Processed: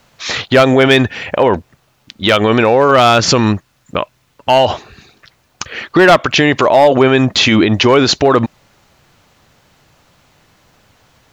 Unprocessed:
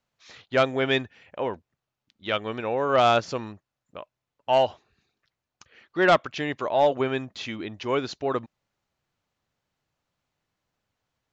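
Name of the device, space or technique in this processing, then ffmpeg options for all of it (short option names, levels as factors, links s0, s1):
loud club master: -filter_complex "[0:a]asettb=1/sr,asplit=3[s0][s1][s2];[s0]atrim=end=2.914[s3];[s1]atrim=start=2.91:end=4.65,asetpts=PTS-STARTPTS,afade=t=in:d=0.004:c=qsin,afade=t=out:st=1.736:d=0.004:c=qsin,equalizer=f=620:w=0.96:g=-5[s4];[s2]atrim=start=4.646[s5];[s3][s4]acrossfade=d=0.004:c1=hsin:c2=qsin[s6];[s6][s5]acrossfade=d=0.004:c1=qsin:c2=hsin,acompressor=threshold=0.0447:ratio=2,asoftclip=type=hard:threshold=0.0944,alimiter=level_in=31.6:limit=0.891:release=50:level=0:latency=1,volume=0.891"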